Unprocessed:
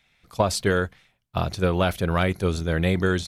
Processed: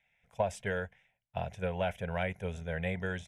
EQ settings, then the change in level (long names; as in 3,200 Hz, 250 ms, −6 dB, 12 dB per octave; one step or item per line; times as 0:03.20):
high-frequency loss of the air 71 metres
low-shelf EQ 120 Hz −9 dB
phaser with its sweep stopped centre 1,200 Hz, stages 6
−6.5 dB